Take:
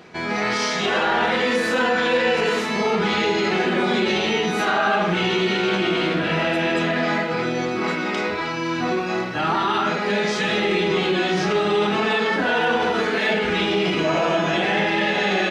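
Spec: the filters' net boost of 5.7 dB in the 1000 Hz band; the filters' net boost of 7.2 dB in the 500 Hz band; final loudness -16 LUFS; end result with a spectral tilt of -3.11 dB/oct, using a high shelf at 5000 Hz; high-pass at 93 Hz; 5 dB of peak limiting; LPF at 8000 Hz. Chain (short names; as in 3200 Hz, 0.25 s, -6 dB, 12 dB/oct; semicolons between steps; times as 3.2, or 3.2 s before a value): HPF 93 Hz; LPF 8000 Hz; bell 500 Hz +8 dB; bell 1000 Hz +5 dB; high shelf 5000 Hz -8.5 dB; gain +1 dB; limiter -7 dBFS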